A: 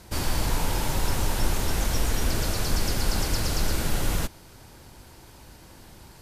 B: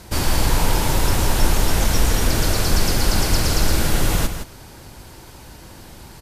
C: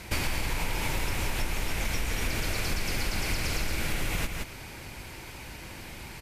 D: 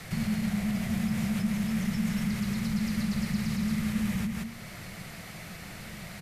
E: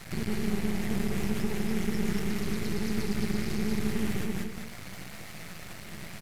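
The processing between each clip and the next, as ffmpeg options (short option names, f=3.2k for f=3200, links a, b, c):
-af "aecho=1:1:167:0.355,volume=7dB"
-af "equalizer=f=2.3k:w=2.1:g=12,acompressor=threshold=-22dB:ratio=10,volume=-3dB"
-filter_complex "[0:a]acrossover=split=300[a][b];[b]alimiter=level_in=7dB:limit=-24dB:level=0:latency=1:release=335,volume=-7dB[c];[a][c]amix=inputs=2:normalize=0,afreqshift=-230"
-af "aeval=exprs='max(val(0),0)':c=same,aecho=1:1:202:0.562,volume=2dB"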